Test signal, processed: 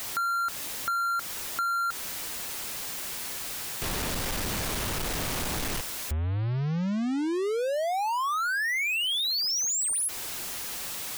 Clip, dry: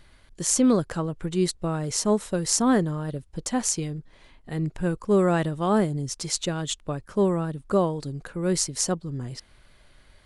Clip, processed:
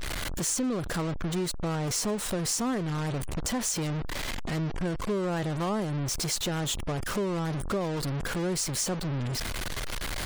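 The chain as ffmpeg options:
-af "aeval=exprs='val(0)+0.5*0.0944*sgn(val(0))':c=same,afftfilt=real='re*gte(hypot(re,im),0.0112)':imag='im*gte(hypot(re,im),0.0112)':win_size=1024:overlap=0.75,acompressor=threshold=0.0891:ratio=4,volume=0.501"

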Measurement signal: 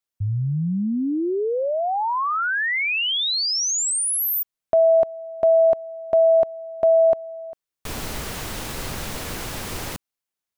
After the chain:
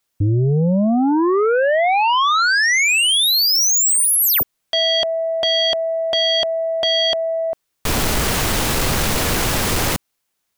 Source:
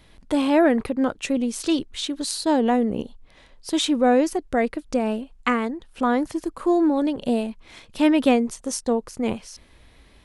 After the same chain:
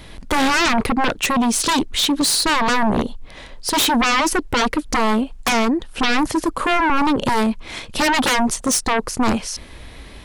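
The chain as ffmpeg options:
-af "aeval=exprs='0.531*sin(PI/2*7.94*val(0)/0.531)':c=same,volume=0.398"

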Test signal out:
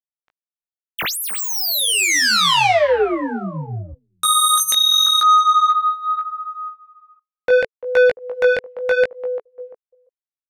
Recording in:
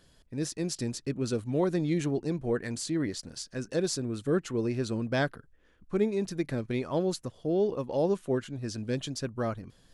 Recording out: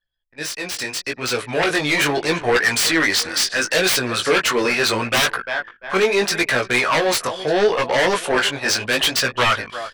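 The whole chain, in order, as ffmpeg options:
-filter_complex "[0:a]asplit=2[s0][s1];[s1]adelay=344,lowpass=f=2900:p=1,volume=0.112,asplit=2[s2][s3];[s3]adelay=344,lowpass=f=2900:p=1,volume=0.43,asplit=2[s4][s5];[s5]adelay=344,lowpass=f=2900:p=1,volume=0.43[s6];[s0][s2][s4][s6]amix=inputs=4:normalize=0,acrossover=split=630[s7][s8];[s8]aeval=exprs='0.119*sin(PI/2*7.94*val(0)/0.119)':c=same[s9];[s7][s9]amix=inputs=2:normalize=0,dynaudnorm=f=600:g=5:m=5.01,equalizer=f=2200:t=o:w=2.3:g=8,anlmdn=251,asoftclip=type=tanh:threshold=0.708,bandreject=f=6800:w=20,adynamicequalizer=threshold=0.0398:dfrequency=440:dqfactor=7.3:tfrequency=440:tqfactor=7.3:attack=5:release=100:ratio=0.375:range=1.5:mode=boostabove:tftype=bell,agate=range=0.447:threshold=0.0447:ratio=16:detection=peak,flanger=delay=16:depth=5.2:speed=0.75,volume=0.562"

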